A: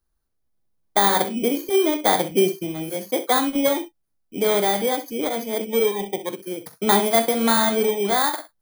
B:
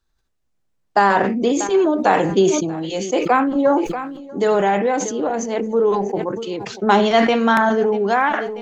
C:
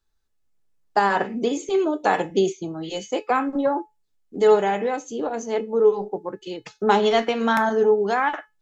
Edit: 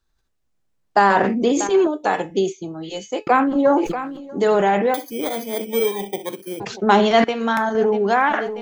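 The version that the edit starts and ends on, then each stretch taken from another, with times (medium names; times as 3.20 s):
B
1.87–3.27 s: from C
4.94–6.60 s: from A
7.24–7.75 s: from C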